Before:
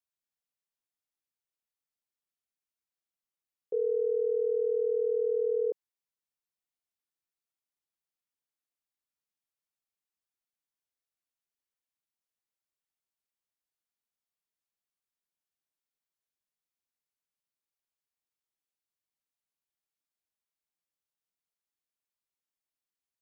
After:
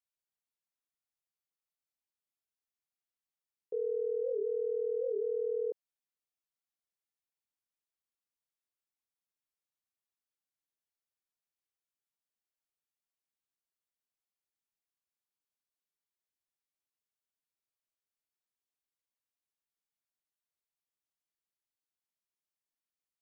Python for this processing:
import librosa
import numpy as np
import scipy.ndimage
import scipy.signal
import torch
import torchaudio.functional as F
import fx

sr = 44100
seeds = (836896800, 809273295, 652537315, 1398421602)

y = fx.record_warp(x, sr, rpm=78.0, depth_cents=160.0)
y = y * 10.0 ** (-5.0 / 20.0)